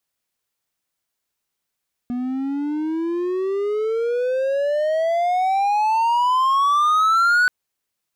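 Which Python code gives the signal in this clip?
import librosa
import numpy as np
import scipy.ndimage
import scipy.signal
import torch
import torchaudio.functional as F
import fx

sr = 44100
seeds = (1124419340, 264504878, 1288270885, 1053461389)

y = fx.riser_tone(sr, length_s=5.38, level_db=-11.0, wave='triangle', hz=242.0, rise_st=31.5, swell_db=9)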